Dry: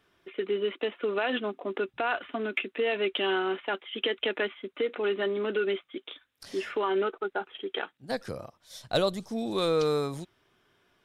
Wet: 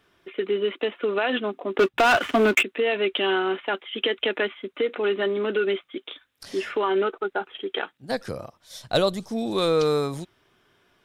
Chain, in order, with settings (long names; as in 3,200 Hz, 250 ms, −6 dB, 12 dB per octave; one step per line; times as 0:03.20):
0:01.79–0:02.63: leveller curve on the samples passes 3
level +4.5 dB